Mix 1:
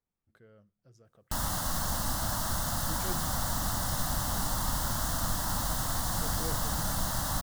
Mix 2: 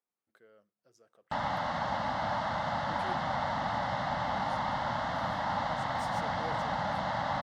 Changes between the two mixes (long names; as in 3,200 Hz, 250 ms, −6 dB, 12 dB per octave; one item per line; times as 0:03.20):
speech: add high-pass filter 370 Hz 12 dB per octave
background: add loudspeaker in its box 140–3,600 Hz, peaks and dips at 360 Hz −7 dB, 590 Hz +7 dB, 840 Hz +9 dB, 2,100 Hz +10 dB